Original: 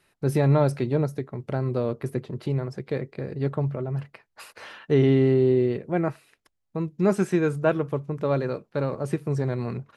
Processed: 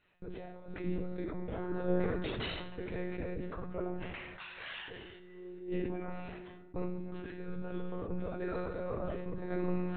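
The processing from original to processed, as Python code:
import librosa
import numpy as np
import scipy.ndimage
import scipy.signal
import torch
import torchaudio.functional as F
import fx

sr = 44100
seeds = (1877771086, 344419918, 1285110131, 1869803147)

y = fx.leveller(x, sr, passes=5, at=(2.24, 2.74))
y = fx.over_compress(y, sr, threshold_db=-27.0, ratio=-0.5)
y = fx.tilt_eq(y, sr, slope=4.0, at=(4.0, 5.19), fade=0.02)
y = fx.resonator_bank(y, sr, root=39, chord='minor', decay_s=0.62)
y = fx.spec_repair(y, sr, seeds[0], start_s=1.62, length_s=0.72, low_hz=770.0, high_hz=1900.0, source='both')
y = fx.notch_comb(y, sr, f0_hz=1000.0, at=(8.05, 8.54))
y = fx.lpc_monotone(y, sr, seeds[1], pitch_hz=180.0, order=16)
y = fx.rev_fdn(y, sr, rt60_s=3.8, lf_ratio=1.0, hf_ratio=0.55, size_ms=71.0, drr_db=17.5)
y = fx.sustainer(y, sr, db_per_s=29.0)
y = F.gain(torch.from_numpy(y), 6.0).numpy()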